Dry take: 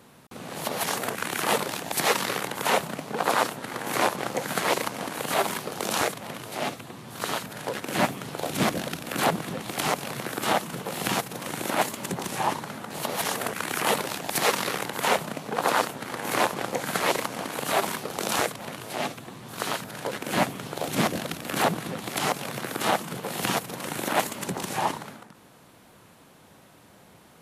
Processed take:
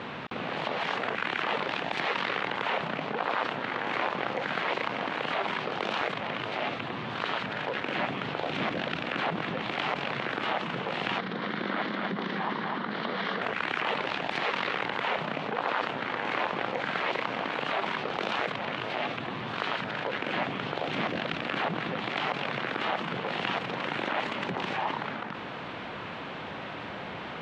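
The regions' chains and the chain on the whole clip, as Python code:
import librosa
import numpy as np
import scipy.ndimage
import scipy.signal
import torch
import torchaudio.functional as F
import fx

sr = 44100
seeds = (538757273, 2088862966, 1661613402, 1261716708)

y = fx.chain(x, sr, fx.cabinet(low_hz=180.0, low_slope=12, high_hz=4700.0, hz=(200.0, 600.0, 860.0, 2600.0), db=(10, -5, -7, -10)),
    fx.echo_single(ms=250, db=-5.5), at=(11.18, 13.42))
y = scipy.signal.sosfilt(scipy.signal.butter(4, 3100.0, 'lowpass', fs=sr, output='sos'), y)
y = fx.tilt_eq(y, sr, slope=2.0)
y = fx.env_flatten(y, sr, amount_pct=70)
y = y * 10.0 ** (-8.0 / 20.0)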